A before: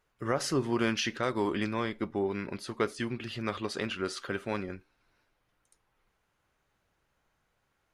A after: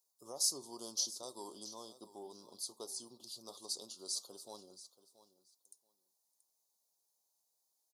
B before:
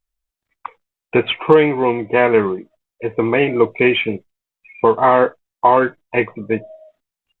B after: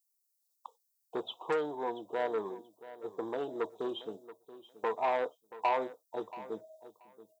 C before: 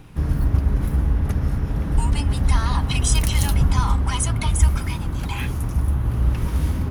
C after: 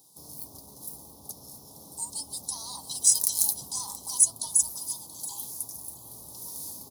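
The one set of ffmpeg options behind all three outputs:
-filter_complex "[0:a]asuperstop=centerf=2000:order=8:qfactor=0.62,asoftclip=type=tanh:threshold=-7dB,highpass=100,aderivative,asplit=2[a][b];[b]aecho=0:1:680|1360:0.158|0.0254[c];[a][c]amix=inputs=2:normalize=0,volume=5.5dB"

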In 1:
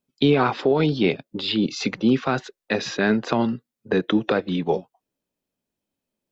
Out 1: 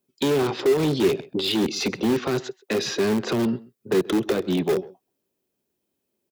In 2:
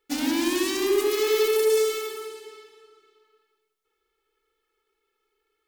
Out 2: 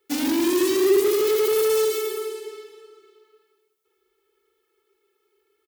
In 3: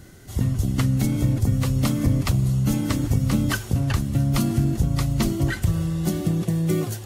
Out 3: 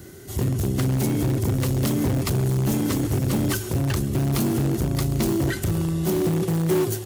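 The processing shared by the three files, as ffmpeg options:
-filter_complex "[0:a]aeval=exprs='(tanh(8.91*val(0)+0.2)-tanh(0.2))/8.91':c=same,equalizer=f=380:t=o:w=0.38:g=10.5,asplit=2[a][b];[b]aecho=0:1:132:0.0708[c];[a][c]amix=inputs=2:normalize=0,acrossover=split=490|3000[d][e][f];[e]acompressor=threshold=-32dB:ratio=4[g];[d][g][f]amix=inputs=3:normalize=0,highshelf=f=10k:g=8.5,asplit=2[h][i];[i]aeval=exprs='(mod(7.94*val(0)+1,2)-1)/7.94':c=same,volume=-11dB[j];[h][j]amix=inputs=2:normalize=0,highpass=56"

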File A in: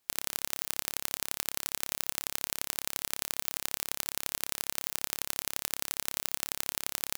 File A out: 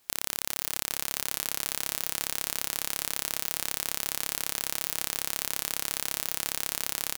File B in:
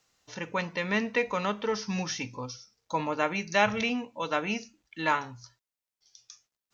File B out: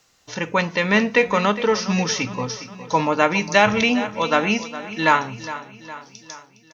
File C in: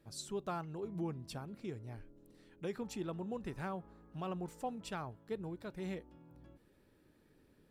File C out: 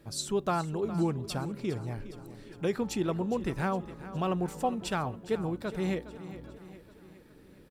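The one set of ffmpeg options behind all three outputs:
-af "asoftclip=type=tanh:threshold=-6dB,aecho=1:1:411|822|1233|1644|2055:0.188|0.102|0.0549|0.0297|0.016,alimiter=level_in=11.5dB:limit=-1dB:release=50:level=0:latency=1,volume=-1dB"

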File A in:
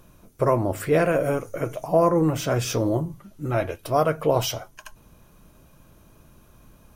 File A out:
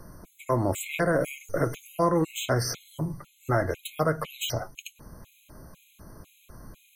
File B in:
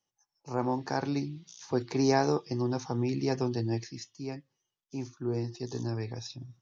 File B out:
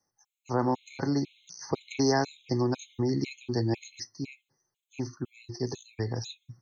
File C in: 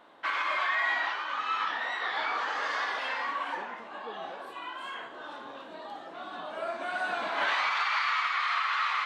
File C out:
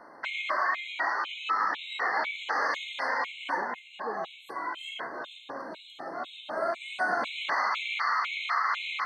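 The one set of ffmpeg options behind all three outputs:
-filter_complex "[0:a]acrossover=split=410|1100[a][b][c];[a]acompressor=threshold=-32dB:ratio=4[d];[b]acompressor=threshold=-36dB:ratio=4[e];[c]acompressor=threshold=-34dB:ratio=4[f];[d][e][f]amix=inputs=3:normalize=0,afftfilt=real='re*gt(sin(2*PI*2*pts/sr)*(1-2*mod(floor(b*sr/1024/2100),2)),0)':imag='im*gt(sin(2*PI*2*pts/sr)*(1-2*mod(floor(b*sr/1024/2100),2)),0)':win_size=1024:overlap=0.75,volume=6.5dB"

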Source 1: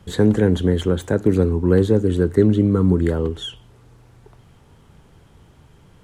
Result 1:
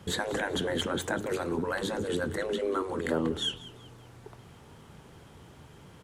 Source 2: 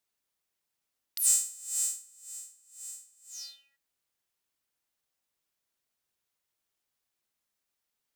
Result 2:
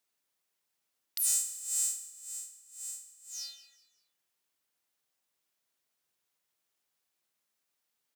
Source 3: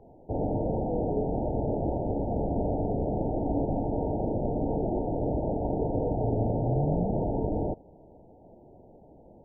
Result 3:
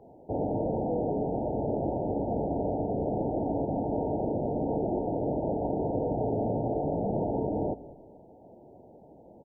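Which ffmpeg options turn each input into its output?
-filter_complex "[0:a]afftfilt=real='re*lt(hypot(re,im),0.447)':imag='im*lt(hypot(re,im),0.447)':win_size=1024:overlap=0.75,highpass=f=150:p=1,asplit=2[a][b];[b]alimiter=limit=-23dB:level=0:latency=1:release=233,volume=0.5dB[c];[a][c]amix=inputs=2:normalize=0,asplit=4[d][e][f][g];[e]adelay=190,afreqshift=-37,volume=-17.5dB[h];[f]adelay=380,afreqshift=-74,volume=-26.4dB[i];[g]adelay=570,afreqshift=-111,volume=-35.2dB[j];[d][h][i][j]amix=inputs=4:normalize=0,volume=-4.5dB"

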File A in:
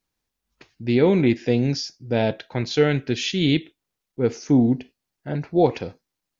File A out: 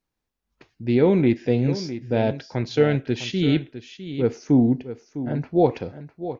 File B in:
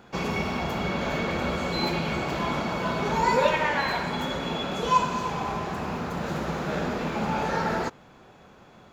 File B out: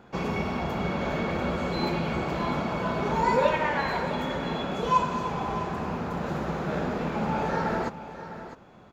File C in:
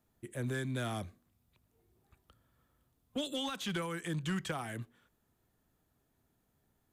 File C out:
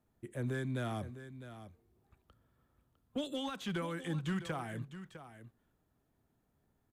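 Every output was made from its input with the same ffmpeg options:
-af "highshelf=f=2.3k:g=-8,aecho=1:1:655:0.237"

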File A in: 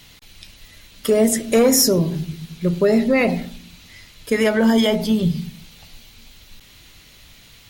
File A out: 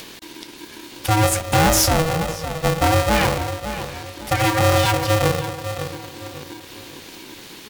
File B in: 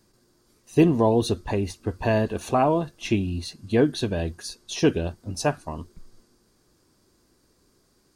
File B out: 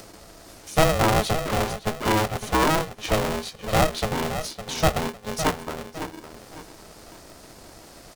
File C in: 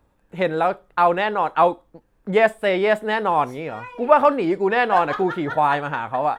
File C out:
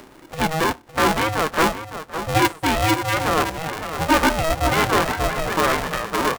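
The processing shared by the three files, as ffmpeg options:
-filter_complex "[0:a]acompressor=mode=upward:threshold=-31dB:ratio=2.5,asplit=2[a][b];[b]adelay=558,lowpass=f=2k:p=1,volume=-11dB,asplit=2[c][d];[d]adelay=558,lowpass=f=2k:p=1,volume=0.35,asplit=2[e][f];[f]adelay=558,lowpass=f=2k:p=1,volume=0.35,asplit=2[g][h];[h]adelay=558,lowpass=f=2k:p=1,volume=0.35[i];[c][e][g][i]amix=inputs=4:normalize=0[j];[a][j]amix=inputs=2:normalize=0,aeval=exprs='(tanh(4.47*val(0)+0.45)-tanh(0.45))/4.47':c=same,aeval=exprs='val(0)*sgn(sin(2*PI*320*n/s))':c=same,volume=2dB"

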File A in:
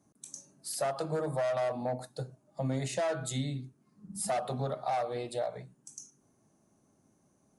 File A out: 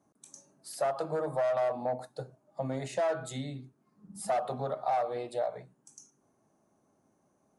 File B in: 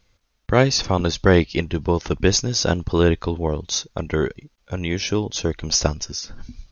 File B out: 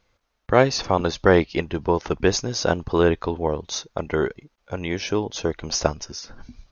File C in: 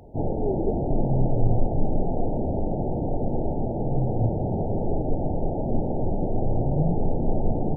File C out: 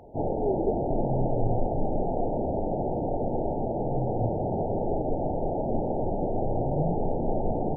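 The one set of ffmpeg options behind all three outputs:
-af "equalizer=f=810:w=0.4:g=9.5,volume=-7dB"

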